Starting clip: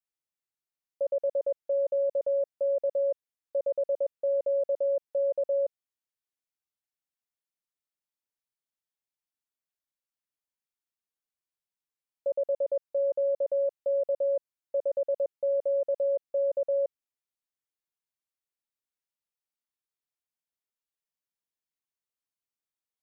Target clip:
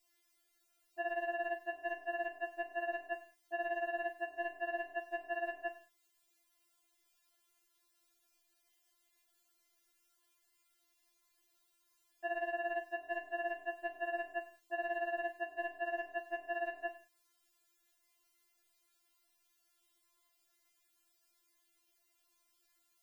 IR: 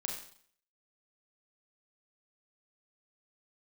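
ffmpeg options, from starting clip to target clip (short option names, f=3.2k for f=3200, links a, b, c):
-filter_complex "[0:a]asoftclip=type=tanh:threshold=-25.5dB,asplit=2[a][b];[1:a]atrim=start_sample=2205,afade=t=out:st=0.26:d=0.01,atrim=end_sample=11907[c];[b][c]afir=irnorm=-1:irlink=0,volume=-5.5dB[d];[a][d]amix=inputs=2:normalize=0,afftfilt=real='re*4*eq(mod(b,16),0)':imag='im*4*eq(mod(b,16),0)':win_size=2048:overlap=0.75,volume=16dB"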